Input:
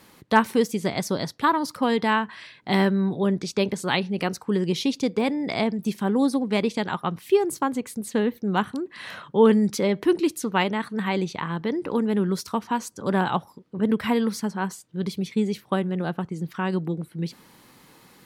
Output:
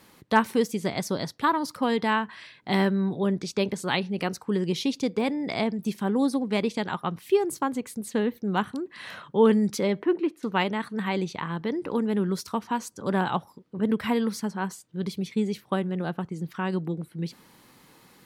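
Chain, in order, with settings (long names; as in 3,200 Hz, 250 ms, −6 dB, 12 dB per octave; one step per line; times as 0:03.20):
0:10.02–0:10.43: three-way crossover with the lows and the highs turned down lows −22 dB, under 210 Hz, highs −23 dB, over 2,600 Hz
level −2.5 dB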